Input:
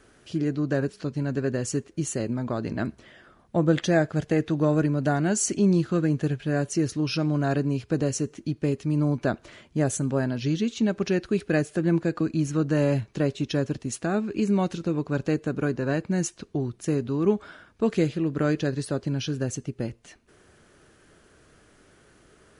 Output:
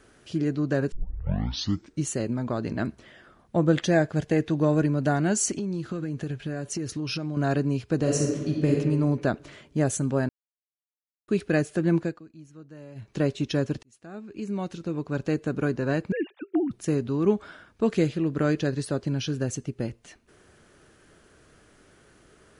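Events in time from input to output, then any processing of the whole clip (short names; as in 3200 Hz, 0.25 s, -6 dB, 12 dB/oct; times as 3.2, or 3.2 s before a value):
0.92 tape start 1.13 s
3.85–4.9 notch 1300 Hz, Q 9.9
5.51–7.37 compressor 12:1, threshold -26 dBFS
7.98–8.74 reverb throw, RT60 1.4 s, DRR -1 dB
10.29–11.28 mute
12–13.15 dip -22 dB, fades 0.20 s
13.83–15.55 fade in
16.12–16.71 sine-wave speech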